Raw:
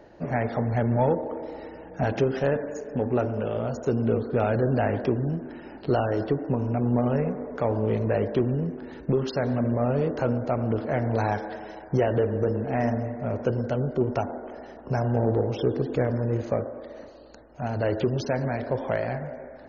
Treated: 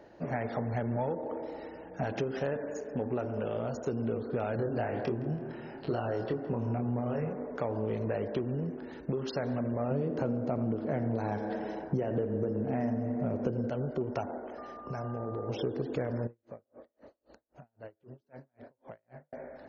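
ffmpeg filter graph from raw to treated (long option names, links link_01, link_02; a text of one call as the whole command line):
ffmpeg -i in.wav -filter_complex "[0:a]asettb=1/sr,asplit=3[link_01][link_02][link_03];[link_01]atrim=end=4.564[link_04];[link_02]atrim=start=4.56:end=7.33,asetpts=PTS-STARTPTS,afade=type=in:duration=0.004:curve=qsin,afade=type=out:start_time=2.766:duration=0.004:curve=qsin,asplit=2[link_05][link_06];[link_06]adelay=26,volume=-4.5dB[link_07];[link_05][link_07]amix=inputs=2:normalize=0,atrim=end_sample=122157,asplit=2[link_08][link_09];[link_09]adelay=165,lowpass=frequency=4600:poles=1,volume=-16dB,asplit=2[link_10][link_11];[link_11]adelay=165,lowpass=frequency=4600:poles=1,volume=0.53,asplit=2[link_12][link_13];[link_13]adelay=165,lowpass=frequency=4600:poles=1,volume=0.53,asplit=2[link_14][link_15];[link_15]adelay=165,lowpass=frequency=4600:poles=1,volume=0.53,asplit=2[link_16][link_17];[link_17]adelay=165,lowpass=frequency=4600:poles=1,volume=0.53[link_18];[link_08][link_10][link_12][link_14][link_16][link_18]amix=inputs=6:normalize=0,atrim=end_sample=122157[link_19];[link_03]atrim=start=7.326[link_20];[link_04][link_19]acrossfade=duration=0.004:curve1=hsin:curve2=qsin[link_21];[link_21][link_20]acrossfade=duration=0.004:curve1=qsin:curve2=hsin,asettb=1/sr,asplit=3[link_22][link_23][link_24];[link_22]atrim=end=9.914[link_25];[link_23]atrim=start=9.91:end=13.7,asetpts=PTS-STARTPTS,afade=type=in:duration=0.004:curve=qsin,afade=type=out:start_time=3.786:duration=0.004:curve=qsin,equalizer=frequency=210:width_type=o:width=2.7:gain=10.5,aecho=1:1:86|172|258:0.178|0.0658|0.0243,atrim=end_sample=167139[link_26];[link_24]atrim=start=13.696[link_27];[link_25][link_26]acrossfade=duration=0.004:curve1=hsin:curve2=qsin[link_28];[link_28][link_27]acrossfade=duration=0.004:curve1=qsin:curve2=hsin,asettb=1/sr,asplit=3[link_29][link_30][link_31];[link_29]atrim=end=14.584[link_32];[link_30]atrim=start=14.58:end=15.49,asetpts=PTS-STARTPTS,afade=type=in:duration=0.004:curve=qsin,afade=type=out:start_time=0.906:duration=0.004:curve=qsin,acompressor=threshold=-28dB:ratio=6:attack=3.2:release=140:knee=1:detection=peak,aeval=exprs='val(0)+0.00794*sin(2*PI*1200*n/s)':channel_layout=same[link_33];[link_31]atrim=start=15.486[link_34];[link_32][link_33]acrossfade=duration=0.004:curve1=hsin:curve2=qsin[link_35];[link_35][link_34]acrossfade=duration=0.004:curve1=qsin:curve2=hsin,asettb=1/sr,asplit=3[link_36][link_37][link_38];[link_36]atrim=end=16.274[link_39];[link_37]atrim=start=16.27:end=19.33,asetpts=PTS-STARTPTS,afade=type=in:duration=0.004:curve=qsin,afade=type=out:start_time=3.056:duration=0.004:curve=qsin,lowpass=frequency=2500:poles=1,acompressor=threshold=-43dB:ratio=2.5:attack=3.2:release=140:knee=1:detection=peak,aeval=exprs='val(0)*pow(10,-40*(0.5-0.5*cos(2*PI*3.8*n/s))/20)':channel_layout=same[link_40];[link_38]atrim=start=19.326[link_41];[link_39][link_40]acrossfade=duration=0.004:curve1=hsin:curve2=qsin[link_42];[link_42][link_41]acrossfade=duration=0.004:curve1=qsin:curve2=hsin,lowshelf=frequency=76:gain=-8.5,acompressor=threshold=-25dB:ratio=6,volume=-3.5dB" out.wav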